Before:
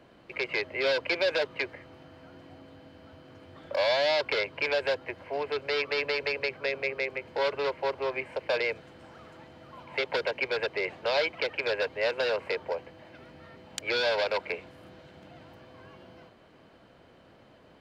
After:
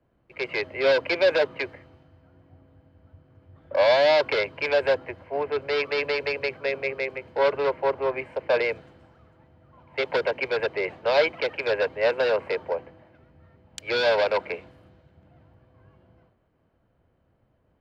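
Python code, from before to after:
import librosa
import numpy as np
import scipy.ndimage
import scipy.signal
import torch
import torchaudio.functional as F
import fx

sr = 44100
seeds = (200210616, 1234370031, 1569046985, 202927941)

y = fx.high_shelf(x, sr, hz=2500.0, db=-8.0)
y = fx.band_widen(y, sr, depth_pct=70)
y = y * 10.0 ** (5.5 / 20.0)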